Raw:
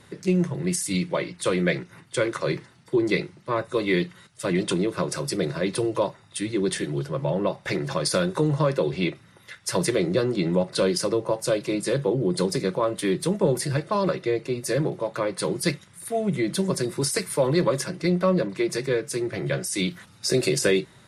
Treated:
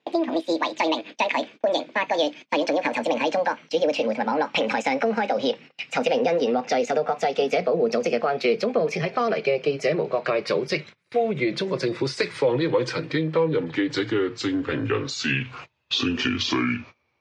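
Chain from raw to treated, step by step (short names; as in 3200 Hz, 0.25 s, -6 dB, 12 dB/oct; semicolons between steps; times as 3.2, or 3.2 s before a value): speed glide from 185% -> 60%; in parallel at -0.5 dB: limiter -18 dBFS, peak gain reduction 9 dB; on the sum: compressor 3:1, threshold -21 dBFS, peak gain reduction 6.5 dB; speaker cabinet 130–4900 Hz, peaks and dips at 190 Hz -8 dB, 480 Hz +5 dB, 2400 Hz +8 dB; gate -40 dBFS, range -25 dB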